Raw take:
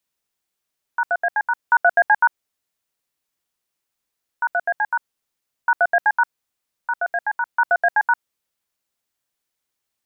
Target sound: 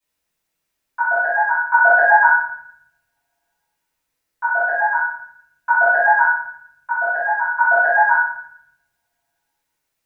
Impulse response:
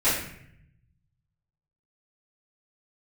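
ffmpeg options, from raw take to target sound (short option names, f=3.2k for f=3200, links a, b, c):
-filter_complex "[1:a]atrim=start_sample=2205[a];[0:a][a]afir=irnorm=-1:irlink=0,volume=-8.5dB"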